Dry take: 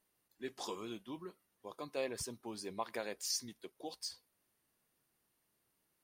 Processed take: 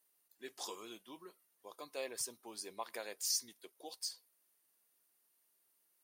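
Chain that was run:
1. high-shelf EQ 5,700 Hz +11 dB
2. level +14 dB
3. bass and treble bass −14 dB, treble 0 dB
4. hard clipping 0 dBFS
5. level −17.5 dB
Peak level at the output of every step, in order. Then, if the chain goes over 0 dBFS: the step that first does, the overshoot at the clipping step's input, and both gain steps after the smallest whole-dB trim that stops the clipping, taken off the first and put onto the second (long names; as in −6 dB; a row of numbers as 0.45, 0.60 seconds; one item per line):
−18.5, −4.5, −4.5, −4.5, −22.0 dBFS
no step passes full scale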